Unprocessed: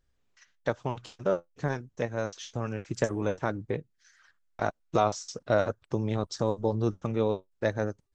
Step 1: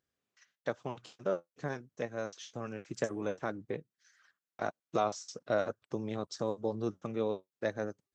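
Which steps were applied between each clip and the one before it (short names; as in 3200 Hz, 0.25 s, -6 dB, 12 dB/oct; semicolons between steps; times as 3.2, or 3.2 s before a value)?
HPF 160 Hz 12 dB/oct; notch 910 Hz, Q 13; gain -5.5 dB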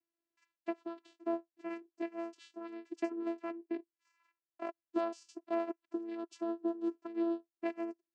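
dynamic EQ 2400 Hz, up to +7 dB, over -56 dBFS, Q 1.3; vocoder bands 8, saw 336 Hz; gain -2 dB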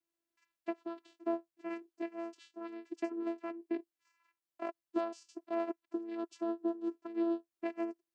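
noise-modulated level, depth 60%; gain +3 dB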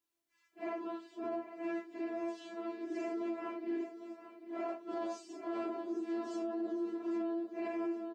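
phase scrambler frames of 0.2 s; feedback echo 0.799 s, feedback 46%, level -12.5 dB; limiter -33.5 dBFS, peak gain reduction 9.5 dB; gain +3 dB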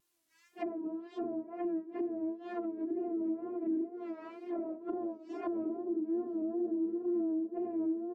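high shelf 4600 Hz +6 dB; treble ducked by the level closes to 360 Hz, closed at -37 dBFS; wow and flutter 82 cents; gain +6.5 dB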